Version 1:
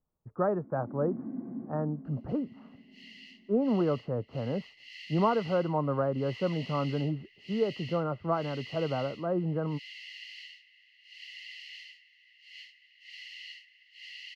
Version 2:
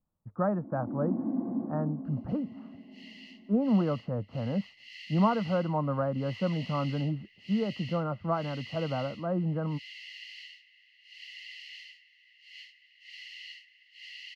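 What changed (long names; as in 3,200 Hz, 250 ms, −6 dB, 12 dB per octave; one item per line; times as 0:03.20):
first sound: add flat-topped bell 570 Hz +12 dB 2.3 octaves
master: add thirty-one-band graphic EQ 100 Hz +5 dB, 200 Hz +7 dB, 400 Hz −11 dB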